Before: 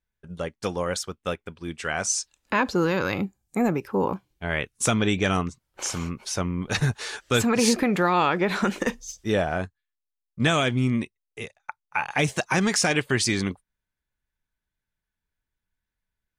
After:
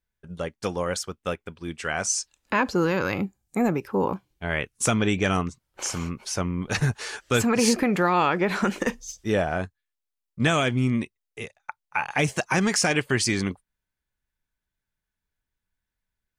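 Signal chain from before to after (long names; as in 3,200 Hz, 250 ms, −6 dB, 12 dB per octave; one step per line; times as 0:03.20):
dynamic equaliser 3,700 Hz, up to −7 dB, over −50 dBFS, Q 7.3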